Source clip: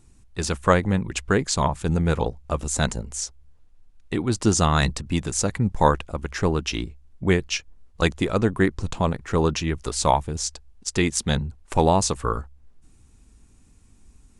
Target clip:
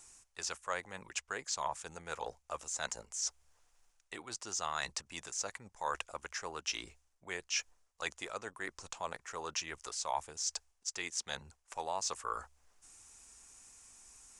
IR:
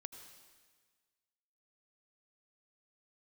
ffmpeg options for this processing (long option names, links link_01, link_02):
-filter_complex "[0:a]acrossover=split=6700[link_01][link_02];[link_02]acompressor=threshold=-42dB:ratio=4:attack=1:release=60[link_03];[link_01][link_03]amix=inputs=2:normalize=0,aexciter=amount=2.9:drive=9:freq=5600,areverse,acompressor=threshold=-35dB:ratio=5,areverse,acrossover=split=570 6700:gain=0.0708 1 0.158[link_04][link_05][link_06];[link_04][link_05][link_06]amix=inputs=3:normalize=0,volume=3dB"